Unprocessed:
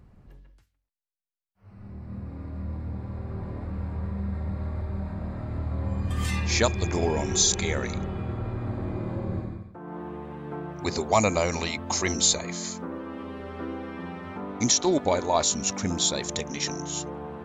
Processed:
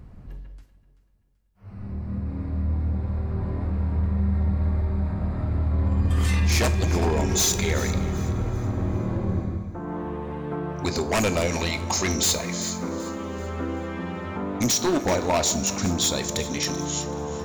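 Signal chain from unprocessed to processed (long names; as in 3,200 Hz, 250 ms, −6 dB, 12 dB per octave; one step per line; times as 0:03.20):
low-shelf EQ 140 Hz +5.5 dB
in parallel at −1 dB: downward compressor, threshold −34 dBFS, peak gain reduction 17.5 dB
on the sum: wave folding −16 dBFS
delay that swaps between a low-pass and a high-pass 192 ms, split 860 Hz, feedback 61%, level −11.5 dB
coupled-rooms reverb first 0.46 s, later 4.2 s, from −19 dB, DRR 10 dB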